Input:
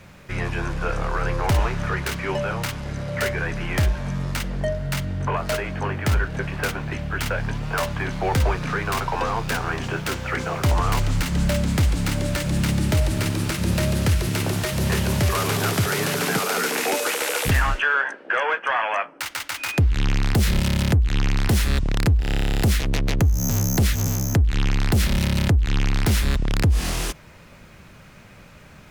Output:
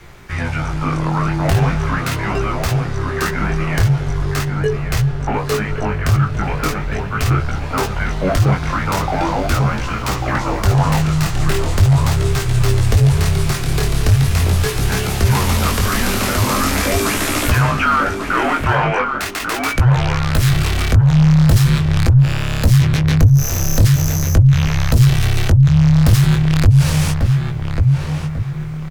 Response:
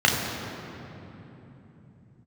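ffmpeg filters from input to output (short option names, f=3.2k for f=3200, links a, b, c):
-filter_complex "[0:a]asplit=2[a][b];[b]adelay=1143,lowpass=f=1.9k:p=1,volume=-4.5dB,asplit=2[c][d];[d]adelay=1143,lowpass=f=1.9k:p=1,volume=0.41,asplit=2[e][f];[f]adelay=1143,lowpass=f=1.9k:p=1,volume=0.41,asplit=2[g][h];[h]adelay=1143,lowpass=f=1.9k:p=1,volume=0.41,asplit=2[i][j];[j]adelay=1143,lowpass=f=1.9k:p=1,volume=0.41[k];[c][e][g][i][k]amix=inputs=5:normalize=0[l];[a][l]amix=inputs=2:normalize=0,flanger=delay=16.5:depth=7.2:speed=0.4,acontrast=56,asoftclip=type=tanh:threshold=-6.5dB,afreqshift=-190,volume=2.5dB"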